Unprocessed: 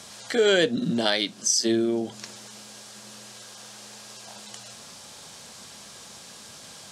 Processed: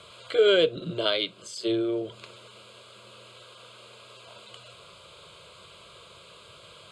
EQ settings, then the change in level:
high-frequency loss of the air 87 metres
phaser with its sweep stopped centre 1,200 Hz, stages 8
+2.0 dB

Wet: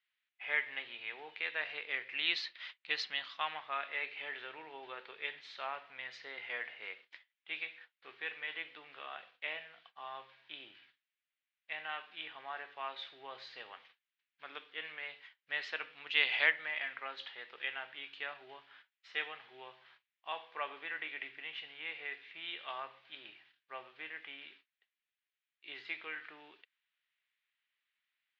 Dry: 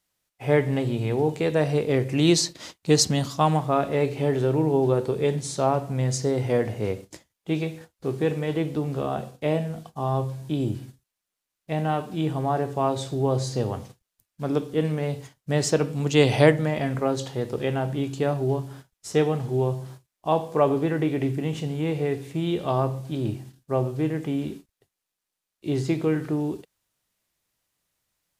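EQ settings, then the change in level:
flat-topped band-pass 2,600 Hz, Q 1.2
high-frequency loss of the air 330 metres
+4.0 dB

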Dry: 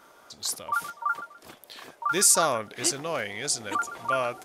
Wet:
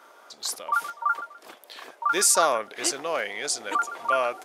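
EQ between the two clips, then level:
high-pass filter 380 Hz 12 dB per octave
high-shelf EQ 4,100 Hz −5.5 dB
+3.5 dB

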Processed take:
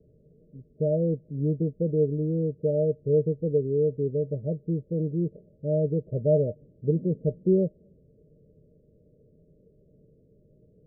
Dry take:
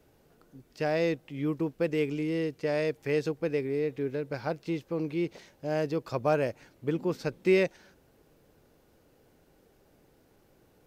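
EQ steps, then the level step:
Chebyshev low-pass with heavy ripple 630 Hz, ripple 9 dB
low-shelf EQ 230 Hz +7 dB
+5.5 dB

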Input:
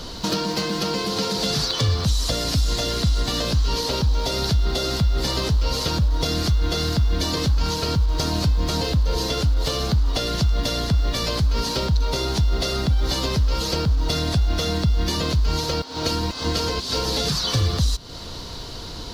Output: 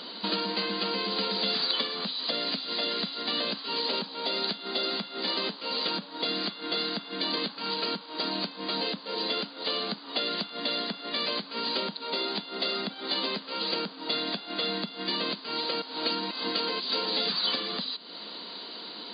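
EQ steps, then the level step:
linear-phase brick-wall band-pass 180–4,900 Hz
parametric band 3,000 Hz +6 dB 2.5 octaves
−7.5 dB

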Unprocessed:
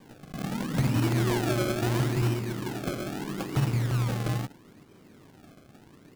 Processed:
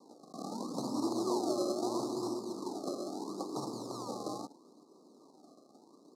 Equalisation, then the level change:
high-pass filter 260 Hz 24 dB per octave
Chebyshev band-stop filter 1,200–4,000 Hz, order 5
low-pass filter 8,100 Hz 12 dB per octave
−2.5 dB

